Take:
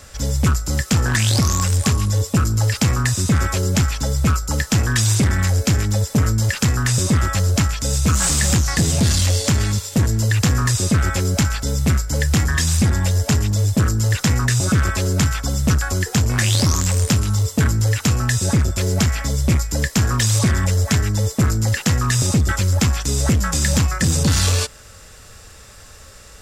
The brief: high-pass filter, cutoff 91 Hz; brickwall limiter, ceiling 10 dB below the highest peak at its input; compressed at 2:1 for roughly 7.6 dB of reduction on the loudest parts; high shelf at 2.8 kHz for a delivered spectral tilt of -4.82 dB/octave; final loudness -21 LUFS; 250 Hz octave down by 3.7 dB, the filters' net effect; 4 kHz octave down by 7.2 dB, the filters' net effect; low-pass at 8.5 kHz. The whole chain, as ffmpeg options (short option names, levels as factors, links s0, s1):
-af "highpass=91,lowpass=8500,equalizer=f=250:t=o:g=-5,highshelf=f=2800:g=-3,equalizer=f=4000:t=o:g=-6.5,acompressor=threshold=0.0355:ratio=2,volume=3.55,alimiter=limit=0.237:level=0:latency=1"